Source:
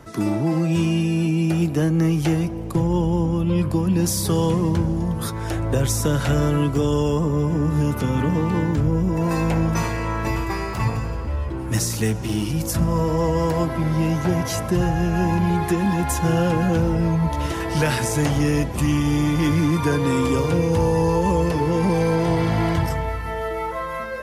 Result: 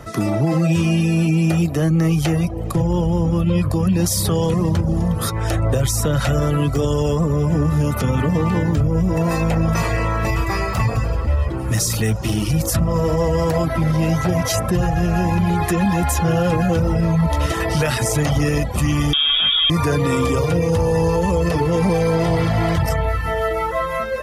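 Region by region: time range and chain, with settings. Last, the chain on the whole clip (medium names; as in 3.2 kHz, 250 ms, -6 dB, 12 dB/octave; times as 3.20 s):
19.13–19.70 s: frequency inversion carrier 3.5 kHz + level flattener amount 100%
whole clip: reverb removal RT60 0.5 s; comb 1.6 ms, depth 34%; peak limiter -16.5 dBFS; trim +6.5 dB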